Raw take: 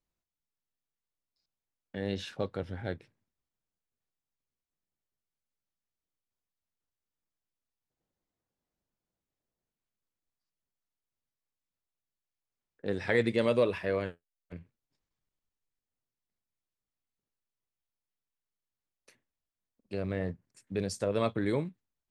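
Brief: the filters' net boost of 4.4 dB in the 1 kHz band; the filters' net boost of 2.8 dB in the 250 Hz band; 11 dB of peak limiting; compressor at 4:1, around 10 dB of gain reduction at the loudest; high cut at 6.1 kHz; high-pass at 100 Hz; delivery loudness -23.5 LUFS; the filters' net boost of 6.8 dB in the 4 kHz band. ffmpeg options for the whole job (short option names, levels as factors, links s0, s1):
-af "highpass=100,lowpass=6100,equalizer=f=250:t=o:g=3.5,equalizer=f=1000:t=o:g=5,equalizer=f=4000:t=o:g=8.5,acompressor=threshold=0.0282:ratio=4,volume=5.96,alimiter=limit=0.335:level=0:latency=1"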